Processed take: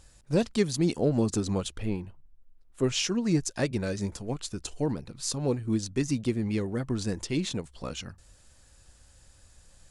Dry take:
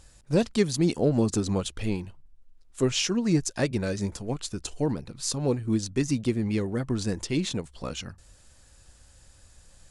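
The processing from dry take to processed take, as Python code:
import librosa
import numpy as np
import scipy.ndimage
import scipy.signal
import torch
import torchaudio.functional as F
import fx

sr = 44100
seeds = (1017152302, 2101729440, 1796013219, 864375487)

y = fx.peak_eq(x, sr, hz=6300.0, db=-10.0, octaves=2.1, at=(1.78, 2.84))
y = F.gain(torch.from_numpy(y), -2.0).numpy()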